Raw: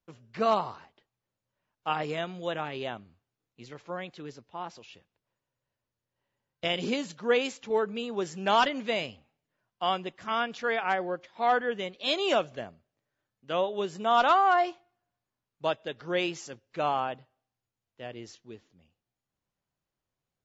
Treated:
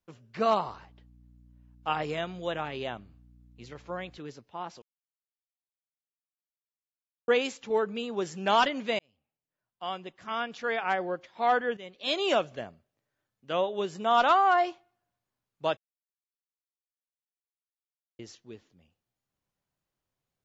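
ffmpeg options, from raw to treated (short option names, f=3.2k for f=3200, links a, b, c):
-filter_complex "[0:a]asettb=1/sr,asplit=3[a][b][c];[a]atrim=end=0.684[d];[b]atrim=start=0.68:end=4.18,asetpts=PTS-STARTPTS,afade=t=in:d=0.004:c=qsin,afade=t=out:st=3.496:d=0.004:c=qsin,aeval=exprs='val(0)+0.00178*(sin(2*PI*60*n/s)+sin(2*PI*2*60*n/s)/2+sin(2*PI*3*60*n/s)/3+sin(2*PI*4*60*n/s)/4+sin(2*PI*5*60*n/s)/5)':c=same[e];[c]atrim=start=4.176[f];[d][e]acrossfade=d=0.004:c1=hsin:c2=qsin[g];[g][f]acrossfade=d=0.004:c1=qsin:c2=hsin,asplit=7[h][i][j][k][l][m][n];[h]atrim=end=4.82,asetpts=PTS-STARTPTS,afade=t=out:st=4.816:d=0.004:c=hsin[o];[i]atrim=start=4.82:end=7.28,asetpts=PTS-STARTPTS,volume=0[p];[j]atrim=start=7.28:end=8.99,asetpts=PTS-STARTPTS,afade=t=in:d=0.004:c=hsin,afade=t=out:st=1.706:d=0.004:c=hsin[q];[k]atrim=start=8.99:end=11.77,asetpts=PTS-STARTPTS,afade=t=in:d=2.05,afade=t=out:st=2.776:d=0.004:c=hsin:silence=0.211349[r];[l]atrim=start=11.77:end=15.77,asetpts=PTS-STARTPTS,afade=t=in:d=0.41:silence=0.211349,afade=t=out:st=3.996:d=0.004:c=hsin[s];[m]atrim=start=15.77:end=18.19,asetpts=PTS-STARTPTS,volume=0[t];[n]atrim=start=18.19,asetpts=PTS-STARTPTS,afade=t=in:d=0.004:c=hsin[u];[o][p][q][r][s][t][u]concat=n=7:v=0:a=1"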